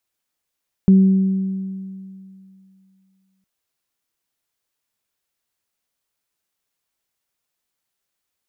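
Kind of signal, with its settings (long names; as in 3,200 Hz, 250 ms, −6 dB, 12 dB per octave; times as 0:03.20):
harmonic partials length 2.56 s, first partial 191 Hz, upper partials −17 dB, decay 2.57 s, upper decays 1.80 s, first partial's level −6.5 dB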